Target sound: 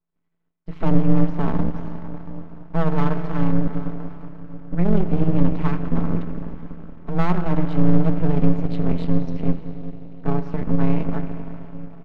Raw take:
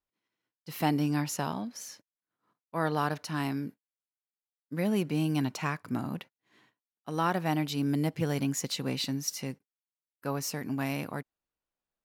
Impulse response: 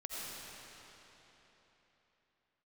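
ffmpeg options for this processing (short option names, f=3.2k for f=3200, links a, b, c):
-filter_complex "[0:a]highpass=120,equalizer=f=130:t=q:w=4:g=-4,equalizer=f=210:t=q:w=4:g=-5,equalizer=f=310:t=q:w=4:g=9,equalizer=f=1.8k:t=q:w=4:g=-8,equalizer=f=2.7k:t=q:w=4:g=-8,lowpass=f=2.9k:w=0.5412,lowpass=f=2.9k:w=1.3066,bandreject=f=50:t=h:w=6,bandreject=f=100:t=h:w=6,bandreject=f=150:t=h:w=6,bandreject=f=200:t=h:w=6,bandreject=f=250:t=h:w=6,bandreject=f=300:t=h:w=6,bandreject=f=350:t=h:w=6,bandreject=f=400:t=h:w=6,bandreject=f=450:t=h:w=6,aecho=1:1:4.6:0.98,asplit=2[a][b];[b]adelay=390,lowpass=f=1.4k:p=1,volume=-17dB,asplit=2[c][d];[d]adelay=390,lowpass=f=1.4k:p=1,volume=0.52,asplit=2[e][f];[f]adelay=390,lowpass=f=1.4k:p=1,volume=0.52,asplit=2[g][h];[h]adelay=390,lowpass=f=1.4k:p=1,volume=0.52,asplit=2[i][j];[j]adelay=390,lowpass=f=1.4k:p=1,volume=0.52[k];[a][c][e][g][i][k]amix=inputs=6:normalize=0,asplit=2[l][m];[1:a]atrim=start_sample=2205,lowpass=3.9k[n];[m][n]afir=irnorm=-1:irlink=0,volume=-6dB[o];[l][o]amix=inputs=2:normalize=0,asoftclip=type=tanh:threshold=-15.5dB,asplit=2[p][q];[q]acrusher=bits=4:mode=log:mix=0:aa=0.000001,volume=-11.5dB[r];[p][r]amix=inputs=2:normalize=0,aeval=exprs='max(val(0),0)':c=same,aemphasis=mode=reproduction:type=bsi,tremolo=f=170:d=0.667,volume=4dB"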